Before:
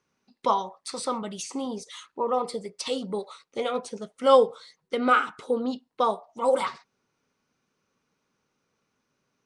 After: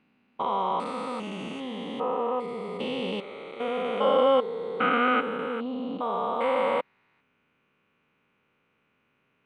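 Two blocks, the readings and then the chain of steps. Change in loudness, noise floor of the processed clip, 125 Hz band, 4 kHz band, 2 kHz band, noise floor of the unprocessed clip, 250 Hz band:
-1.0 dB, -72 dBFS, no reading, -1.0 dB, +2.0 dB, -78 dBFS, +0.5 dB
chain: spectrogram pixelated in time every 400 ms; resonant high shelf 3.8 kHz -13 dB, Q 3; trim +5 dB

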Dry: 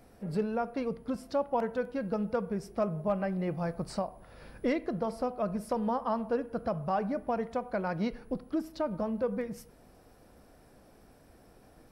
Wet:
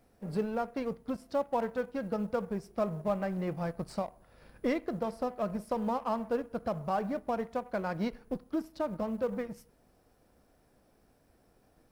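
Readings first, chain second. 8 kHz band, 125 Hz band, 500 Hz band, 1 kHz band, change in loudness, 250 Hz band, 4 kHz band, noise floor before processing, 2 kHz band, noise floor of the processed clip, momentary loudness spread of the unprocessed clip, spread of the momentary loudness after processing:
no reading, -2.0 dB, -1.0 dB, -1.0 dB, -1.5 dB, -1.5 dB, -1.0 dB, -59 dBFS, -1.0 dB, -67 dBFS, 5 LU, 5 LU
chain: companding laws mixed up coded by A

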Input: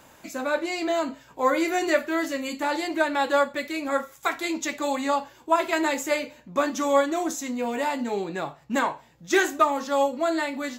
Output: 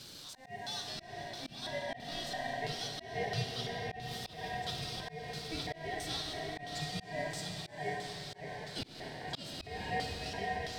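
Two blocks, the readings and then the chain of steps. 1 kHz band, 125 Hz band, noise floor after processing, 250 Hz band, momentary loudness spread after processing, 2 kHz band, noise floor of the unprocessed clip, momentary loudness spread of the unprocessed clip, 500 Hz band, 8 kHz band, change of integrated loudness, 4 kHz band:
-15.0 dB, +7.0 dB, -53 dBFS, -19.0 dB, 6 LU, -13.5 dB, -54 dBFS, 7 LU, -17.0 dB, -12.0 dB, -14.0 dB, -3.5 dB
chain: jump at every zero crossing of -30.5 dBFS; on a send: echo that smears into a reverb 565 ms, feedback 57%, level -4.5 dB; on the sum: LFO band-pass square 1.5 Hz 580–2900 Hz; ring modulator 1.3 kHz; ten-band graphic EQ 125 Hz +11 dB, 1 kHz -9 dB, 2 kHz -11 dB, 8 kHz -4 dB; Schroeder reverb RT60 2.9 s, combs from 26 ms, DRR 5 dB; slow attack 212 ms; treble shelf 3.7 kHz +8.5 dB; trim -1.5 dB

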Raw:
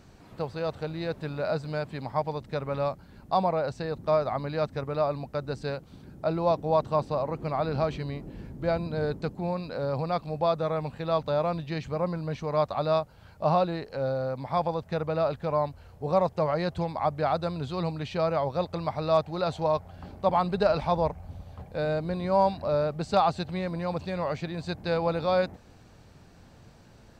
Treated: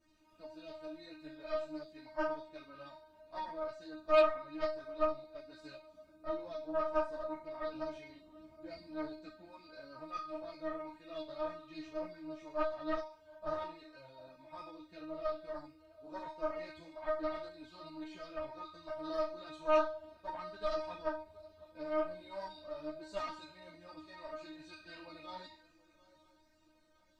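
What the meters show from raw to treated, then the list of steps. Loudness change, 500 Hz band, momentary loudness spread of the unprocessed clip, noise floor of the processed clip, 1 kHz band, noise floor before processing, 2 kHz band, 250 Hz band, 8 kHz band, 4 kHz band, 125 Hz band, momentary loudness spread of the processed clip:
-11.0 dB, -11.0 dB, 8 LU, -67 dBFS, -13.0 dB, -53 dBFS, -8.5 dB, -12.5 dB, no reading, -11.5 dB, -30.5 dB, 17 LU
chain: band-stop 820 Hz, Q 12; feedback comb 310 Hz, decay 0.54 s, harmonics all, mix 100%; shuffle delay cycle 963 ms, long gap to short 3:1, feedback 31%, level -21 dB; Chebyshev shaper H 6 -14 dB, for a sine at -20 dBFS; three-phase chorus; trim +6 dB

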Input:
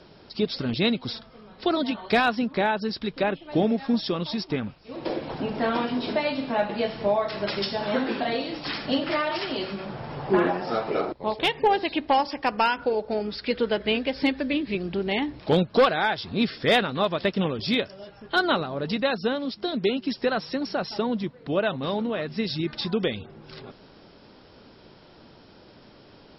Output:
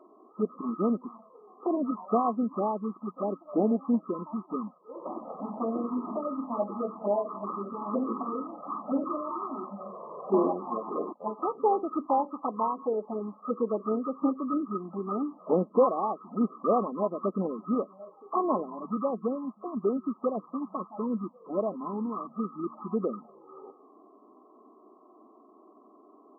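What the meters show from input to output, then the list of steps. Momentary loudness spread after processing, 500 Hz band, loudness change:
10 LU, -4.5 dB, -5.0 dB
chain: knee-point frequency compression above 1 kHz 4:1; touch-sensitive flanger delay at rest 3.1 ms, full sweep at -18 dBFS; brick-wall FIR band-pass 180–1300 Hz; trim -1.5 dB

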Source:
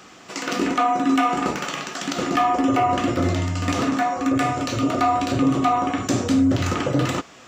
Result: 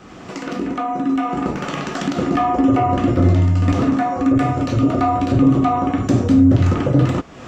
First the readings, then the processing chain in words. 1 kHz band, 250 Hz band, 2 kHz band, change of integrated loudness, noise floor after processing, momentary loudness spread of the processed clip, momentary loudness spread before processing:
0.0 dB, +5.5 dB, -2.5 dB, +4.0 dB, -37 dBFS, 9 LU, 7 LU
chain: fade-in on the opening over 2.12 s; tilt EQ -3 dB/octave; upward compressor, threshold -16 dBFS

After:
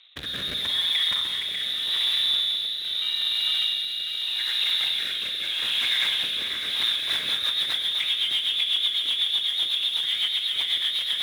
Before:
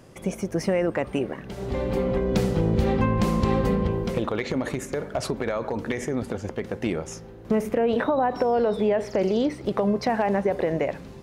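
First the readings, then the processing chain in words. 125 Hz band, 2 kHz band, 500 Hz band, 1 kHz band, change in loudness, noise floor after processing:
under -25 dB, +4.0 dB, -27.5 dB, -15.5 dB, +2.5 dB, -31 dBFS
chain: backward echo that repeats 297 ms, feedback 73%, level -2 dB; frequency inversion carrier 3.9 kHz; spectral gate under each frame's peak -30 dB strong; in parallel at -4 dB: Schmitt trigger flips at -35.5 dBFS; on the sum: level held to a coarse grid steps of 13 dB; high-pass 76 Hz; peaking EQ 2.1 kHz +12.5 dB 2.8 oct; on a send: echo that smears into a reverb 1096 ms, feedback 62%, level -13 dB; on the sum: Schroeder reverb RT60 1.6 s, combs from 31 ms, DRR 3.5 dB; rotary cabinet horn 0.8 Hz, later 8 Hz, at 6.60 s; trim -9 dB

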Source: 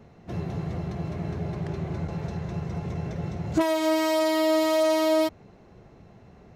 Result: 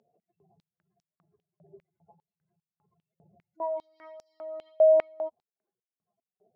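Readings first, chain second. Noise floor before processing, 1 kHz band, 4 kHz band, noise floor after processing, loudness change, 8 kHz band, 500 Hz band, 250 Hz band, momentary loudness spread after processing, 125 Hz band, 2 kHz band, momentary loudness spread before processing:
-53 dBFS, -11.5 dB, under -30 dB, under -85 dBFS, +0.5 dB, under -35 dB, -2.0 dB, -30.5 dB, 20 LU, under -35 dB, under -15 dB, 11 LU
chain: spectral contrast enhancement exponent 3; four-pole ladder low-pass 7.3 kHz, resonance 35%; step-sequenced high-pass 5 Hz 620–5700 Hz

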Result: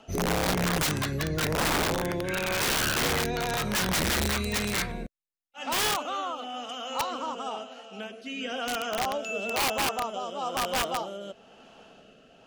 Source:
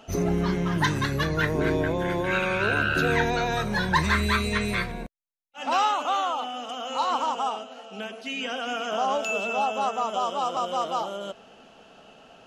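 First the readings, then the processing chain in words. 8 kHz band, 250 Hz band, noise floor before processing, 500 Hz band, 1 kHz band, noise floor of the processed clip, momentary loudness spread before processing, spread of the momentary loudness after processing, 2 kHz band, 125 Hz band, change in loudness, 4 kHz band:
+8.5 dB, -3.5 dB, -52 dBFS, -3.5 dB, -5.0 dB, -56 dBFS, 11 LU, 12 LU, -3.5 dB, -4.0 dB, -2.5 dB, +2.0 dB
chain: rotary cabinet horn 1 Hz; integer overflow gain 20.5 dB

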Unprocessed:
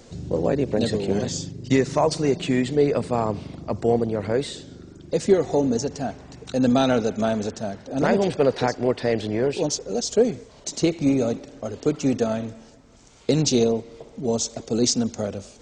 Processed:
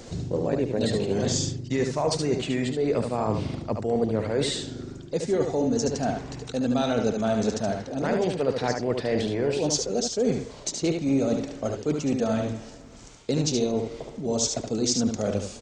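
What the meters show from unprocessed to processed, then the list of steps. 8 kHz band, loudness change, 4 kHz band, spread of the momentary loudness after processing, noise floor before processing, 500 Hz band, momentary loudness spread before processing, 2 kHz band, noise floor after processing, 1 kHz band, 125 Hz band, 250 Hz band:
-0.5 dB, -3.0 dB, -1.0 dB, 7 LU, -49 dBFS, -3.5 dB, 12 LU, -3.0 dB, -43 dBFS, -3.5 dB, -1.5 dB, -3.0 dB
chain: reverse; compression, threshold -27 dBFS, peak gain reduction 14.5 dB; reverse; delay 73 ms -5.5 dB; trim +4.5 dB

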